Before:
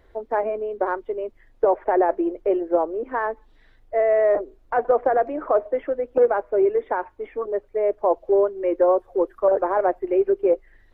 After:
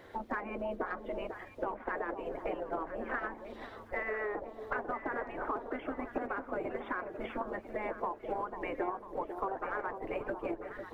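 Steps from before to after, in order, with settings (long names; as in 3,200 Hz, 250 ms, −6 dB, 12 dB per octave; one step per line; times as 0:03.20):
gate on every frequency bin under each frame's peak −10 dB weak
in parallel at −2.5 dB: output level in coarse steps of 12 dB
on the sum: hum removal 75.19 Hz, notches 4
downward compressor 10 to 1, threshold −39 dBFS, peak gain reduction 21 dB
delay that swaps between a low-pass and a high-pass 496 ms, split 1,000 Hz, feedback 59%, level −7 dB
level +5.5 dB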